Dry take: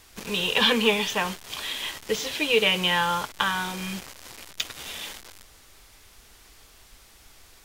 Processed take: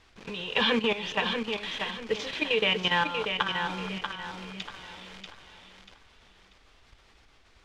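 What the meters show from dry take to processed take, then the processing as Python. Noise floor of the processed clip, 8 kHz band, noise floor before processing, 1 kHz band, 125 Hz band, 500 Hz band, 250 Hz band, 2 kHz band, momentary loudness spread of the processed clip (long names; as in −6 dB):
−60 dBFS, −14.5 dB, −54 dBFS, −3.0 dB, −3.5 dB, −3.0 dB, −2.5 dB, −3.0 dB, 18 LU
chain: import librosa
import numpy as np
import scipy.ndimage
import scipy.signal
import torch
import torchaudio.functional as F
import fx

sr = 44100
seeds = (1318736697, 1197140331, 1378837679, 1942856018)

y = scipy.signal.sosfilt(scipy.signal.butter(2, 3700.0, 'lowpass', fs=sr, output='sos'), x)
y = fx.level_steps(y, sr, step_db=12)
y = fx.echo_feedback(y, sr, ms=638, feedback_pct=33, wet_db=-6.0)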